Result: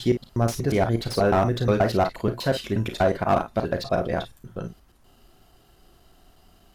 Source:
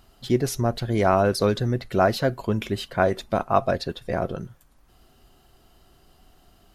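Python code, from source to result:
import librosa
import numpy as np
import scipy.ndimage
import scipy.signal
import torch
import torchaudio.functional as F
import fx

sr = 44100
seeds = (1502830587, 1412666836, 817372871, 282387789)

y = fx.block_reorder(x, sr, ms=120.0, group=3)
y = fx.room_early_taps(y, sr, ms=(35, 52), db=(-11.0, -11.5))
y = fx.slew_limit(y, sr, full_power_hz=160.0)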